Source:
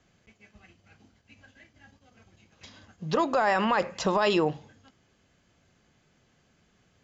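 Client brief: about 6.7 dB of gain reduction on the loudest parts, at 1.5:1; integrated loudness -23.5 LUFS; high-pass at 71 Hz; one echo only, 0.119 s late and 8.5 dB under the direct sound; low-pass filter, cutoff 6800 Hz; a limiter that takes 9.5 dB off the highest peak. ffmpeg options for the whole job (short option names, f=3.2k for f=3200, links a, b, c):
-af "highpass=71,lowpass=6.8k,acompressor=threshold=-39dB:ratio=1.5,alimiter=level_in=5dB:limit=-24dB:level=0:latency=1,volume=-5dB,aecho=1:1:119:0.376,volume=15.5dB"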